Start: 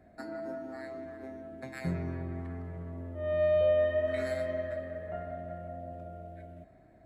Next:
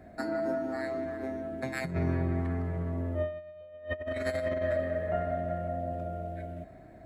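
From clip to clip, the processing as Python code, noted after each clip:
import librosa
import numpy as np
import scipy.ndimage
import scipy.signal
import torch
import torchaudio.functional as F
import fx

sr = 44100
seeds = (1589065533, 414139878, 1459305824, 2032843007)

y = fx.over_compress(x, sr, threshold_db=-35.0, ratio=-0.5)
y = y * 10.0 ** (4.5 / 20.0)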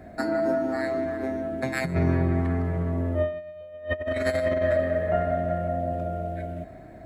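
y = x + 10.0 ** (-23.5 / 20.0) * np.pad(x, (int(145 * sr / 1000.0), 0))[:len(x)]
y = y * 10.0 ** (6.5 / 20.0)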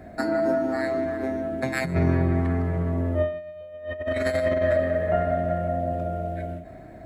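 y = fx.end_taper(x, sr, db_per_s=110.0)
y = y * 10.0 ** (1.5 / 20.0)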